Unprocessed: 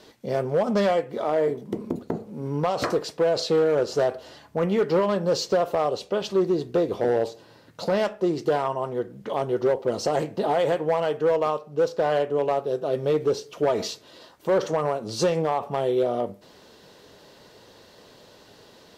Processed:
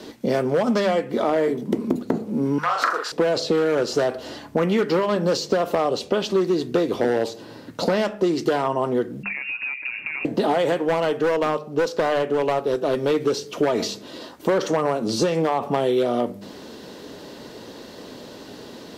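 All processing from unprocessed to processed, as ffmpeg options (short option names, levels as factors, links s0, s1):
-filter_complex "[0:a]asettb=1/sr,asplit=3[s0][s1][s2];[s0]atrim=end=2.584[s3];[s1]atrim=start=2.58:end=3.12,asetpts=PTS-STARTPTS,afade=t=in:d=0.004:c=qsin,afade=t=out:st=0.536:d=0.004:c=qsin,highpass=f=1400:t=q:w=4.4,asplit=2[s4][s5];[s5]adelay=39,volume=0.708[s6];[s4][s6]amix=inputs=2:normalize=0,atrim=end_sample=23814[s7];[s2]atrim=start=3.116[s8];[s3][s7]acrossfade=d=0.004:c1=hsin:c2=qsin[s9];[s9][s8]acrossfade=d=0.004:c1=qsin:c2=hsin,asettb=1/sr,asplit=3[s10][s11][s12];[s10]atrim=end=9.234[s13];[s11]atrim=start=9.23:end=10.25,asetpts=PTS-STARTPTS,afade=t=in:d=0.004:c=qsin,afade=t=out:st=1.016:d=0.004:c=qsin,acompressor=threshold=0.0355:ratio=6:attack=3.2:release=140:knee=1:detection=peak,lowpass=f=2500:t=q:w=0.5098,lowpass=f=2500:t=q:w=0.6013,lowpass=f=2500:t=q:w=0.9,lowpass=f=2500:t=q:w=2.563,afreqshift=-2900[s14];[s12]atrim=start=10.246[s15];[s13][s14]acrossfade=d=0.004:c1=hsin:c2=qsin[s16];[s16][s15]acrossfade=d=0.004:c1=qsin:c2=hsin,asettb=1/sr,asplit=3[s17][s18][s19];[s17]atrim=end=10.794[s20];[s18]atrim=start=10.79:end=13.11,asetpts=PTS-STARTPTS,afade=t=in:d=0.004:c=qsin,afade=t=out:st=2.316:d=0.004:c=qsin,equalizer=f=110:w=0.35:g=-3.5,aeval=exprs='clip(val(0),-1,0.075)':c=same[s21];[s19]atrim=start=13.106[s22];[s20][s21]acrossfade=d=0.004:c1=hsin:c2=qsin[s23];[s23][s22]acrossfade=d=0.004:c1=qsin:c2=hsin,equalizer=f=260:w=1.3:g=9.5,bandreject=f=50:t=h:w=6,bandreject=f=100:t=h:w=6,bandreject=f=150:t=h:w=6,bandreject=f=200:t=h:w=6,acrossover=split=130|1100[s24][s25][s26];[s24]acompressor=threshold=0.00251:ratio=4[s27];[s25]acompressor=threshold=0.0355:ratio=4[s28];[s26]acompressor=threshold=0.0158:ratio=4[s29];[s27][s28][s29]amix=inputs=3:normalize=0,volume=2.66"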